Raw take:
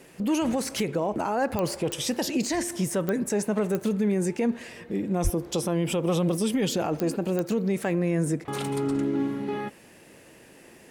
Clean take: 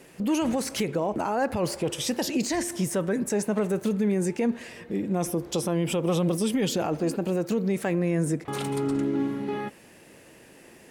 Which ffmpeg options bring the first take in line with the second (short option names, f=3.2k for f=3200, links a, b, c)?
-filter_complex "[0:a]adeclick=t=4,asplit=3[a][b][c];[a]afade=t=out:st=5.23:d=0.02[d];[b]highpass=f=140:w=0.5412,highpass=f=140:w=1.3066,afade=t=in:st=5.23:d=0.02,afade=t=out:st=5.35:d=0.02[e];[c]afade=t=in:st=5.35:d=0.02[f];[d][e][f]amix=inputs=3:normalize=0"